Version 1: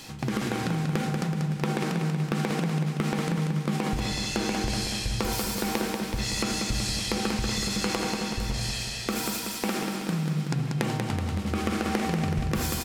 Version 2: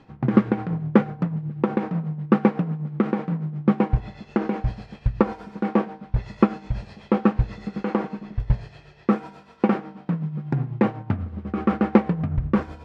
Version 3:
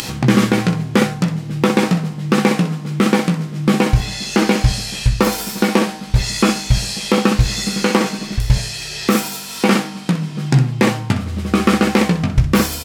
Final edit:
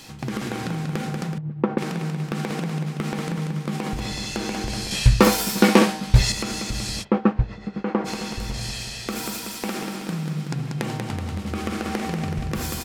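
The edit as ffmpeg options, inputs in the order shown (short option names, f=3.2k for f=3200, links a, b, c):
-filter_complex "[1:a]asplit=2[a][b];[0:a]asplit=4[c][d][e][f];[c]atrim=end=1.382[g];[a]atrim=start=1.378:end=1.782[h];[d]atrim=start=1.778:end=4.912[i];[2:a]atrim=start=4.908:end=6.322[j];[e]atrim=start=6.318:end=7.05[k];[b]atrim=start=7.01:end=8.08[l];[f]atrim=start=8.04[m];[g][h]acrossfade=d=0.004:c1=hsin:c2=hsin[n];[n][i]acrossfade=d=0.004:c1=hsin:c2=hsin[o];[o][j]acrossfade=d=0.004:c1=hsin:c2=hsin[p];[p][k]acrossfade=d=0.004:c1=hsin:c2=hsin[q];[q][l]acrossfade=d=0.04:c1=tri:c2=tri[r];[r][m]acrossfade=d=0.04:c1=tri:c2=tri"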